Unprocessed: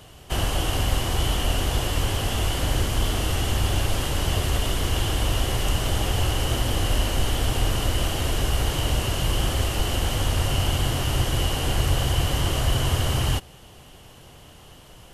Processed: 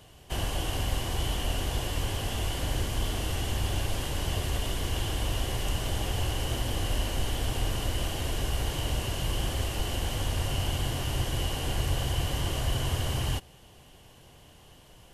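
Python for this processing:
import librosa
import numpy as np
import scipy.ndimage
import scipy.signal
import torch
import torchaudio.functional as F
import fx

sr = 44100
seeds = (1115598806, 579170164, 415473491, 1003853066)

y = fx.notch(x, sr, hz=1300.0, q=10.0)
y = y * librosa.db_to_amplitude(-6.5)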